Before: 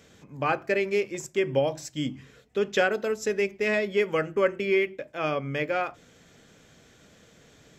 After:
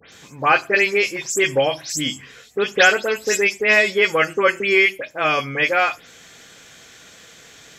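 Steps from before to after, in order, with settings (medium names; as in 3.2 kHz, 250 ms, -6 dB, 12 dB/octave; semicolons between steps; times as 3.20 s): delay that grows with frequency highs late, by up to 124 ms; tilt shelf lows -7.5 dB, about 670 Hz; trim +8 dB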